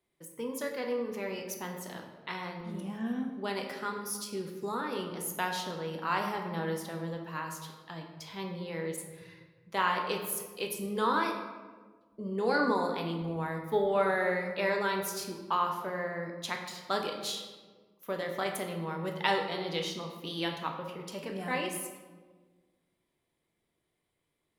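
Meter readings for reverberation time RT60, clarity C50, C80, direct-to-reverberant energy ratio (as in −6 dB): 1.5 s, 5.5 dB, 7.0 dB, 2.0 dB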